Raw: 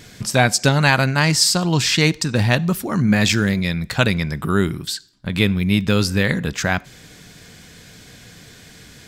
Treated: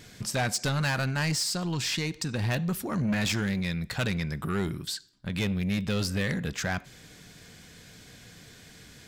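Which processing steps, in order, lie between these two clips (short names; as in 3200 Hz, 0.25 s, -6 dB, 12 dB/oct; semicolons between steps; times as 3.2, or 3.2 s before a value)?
1.33–2.43 compressor 5:1, threshold -17 dBFS, peak gain reduction 6.5 dB; soft clip -15.5 dBFS, distortion -10 dB; gain -7 dB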